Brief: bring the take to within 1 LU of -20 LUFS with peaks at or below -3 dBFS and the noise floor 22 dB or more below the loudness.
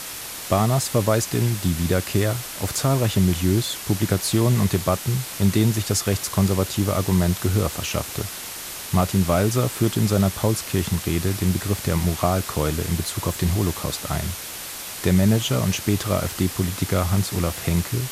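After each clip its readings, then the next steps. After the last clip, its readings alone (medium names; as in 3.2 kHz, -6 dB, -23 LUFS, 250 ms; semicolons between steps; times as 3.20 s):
noise floor -34 dBFS; noise floor target -45 dBFS; loudness -22.5 LUFS; peak level -4.0 dBFS; loudness target -20.0 LUFS
-> noise reduction 11 dB, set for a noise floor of -34 dBFS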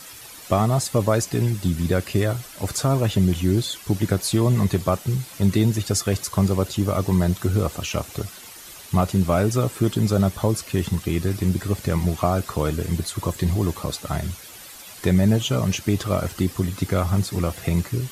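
noise floor -42 dBFS; noise floor target -45 dBFS
-> noise reduction 6 dB, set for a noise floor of -42 dBFS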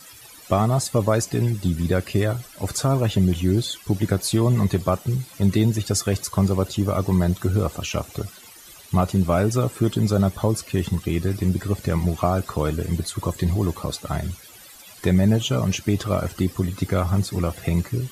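noise floor -45 dBFS; loudness -23.0 LUFS; peak level -4.5 dBFS; loudness target -20.0 LUFS
-> trim +3 dB; peak limiter -3 dBFS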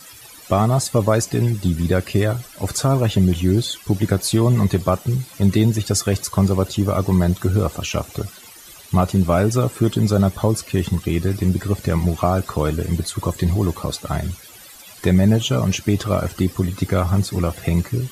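loudness -20.0 LUFS; peak level -3.0 dBFS; noise floor -42 dBFS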